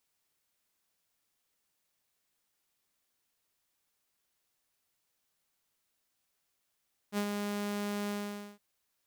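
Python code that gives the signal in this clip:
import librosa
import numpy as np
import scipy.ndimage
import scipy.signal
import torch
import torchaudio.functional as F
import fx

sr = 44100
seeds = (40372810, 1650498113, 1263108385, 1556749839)

y = fx.adsr_tone(sr, wave='saw', hz=205.0, attack_ms=58.0, decay_ms=72.0, sustain_db=-4.5, held_s=0.98, release_ms=484.0, level_db=-26.0)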